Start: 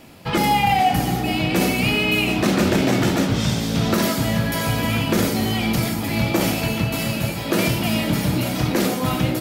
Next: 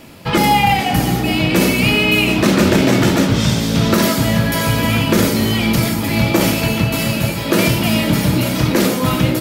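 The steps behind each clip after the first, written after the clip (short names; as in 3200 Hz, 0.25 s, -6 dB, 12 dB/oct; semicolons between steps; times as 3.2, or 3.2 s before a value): notch 750 Hz, Q 12; gain +5.5 dB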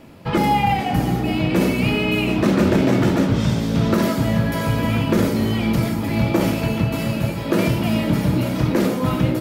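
high shelf 2100 Hz -10.5 dB; gain -3 dB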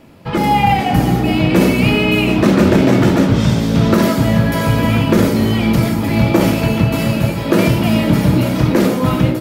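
AGC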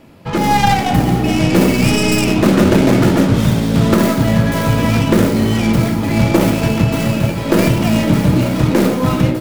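tracing distortion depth 0.24 ms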